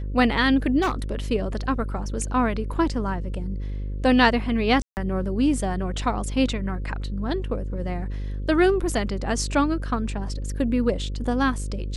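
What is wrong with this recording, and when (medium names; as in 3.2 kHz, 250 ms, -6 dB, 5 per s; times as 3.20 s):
buzz 50 Hz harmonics 11 -29 dBFS
0.81–1.15 s: clipped -19 dBFS
4.82–4.97 s: dropout 149 ms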